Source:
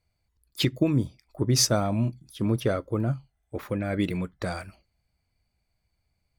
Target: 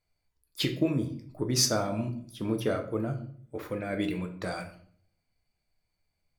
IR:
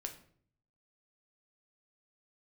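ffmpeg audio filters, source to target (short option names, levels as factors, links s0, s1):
-filter_complex "[0:a]equalizer=f=80:w=0.66:g=-7.5[s0];[1:a]atrim=start_sample=2205[s1];[s0][s1]afir=irnorm=-1:irlink=0"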